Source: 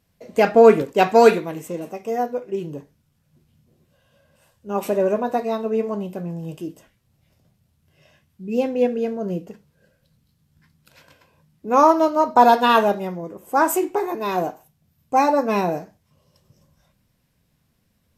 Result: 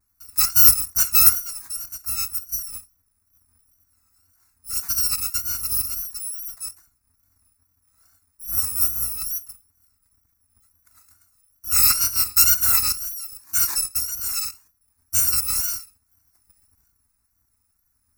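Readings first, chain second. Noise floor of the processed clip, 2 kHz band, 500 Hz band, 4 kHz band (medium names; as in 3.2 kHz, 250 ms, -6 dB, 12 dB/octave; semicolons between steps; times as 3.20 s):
-70 dBFS, -6.5 dB, under -35 dB, +8.5 dB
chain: bit-reversed sample order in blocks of 256 samples; wow and flutter 92 cents; static phaser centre 1.3 kHz, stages 4; trim -1 dB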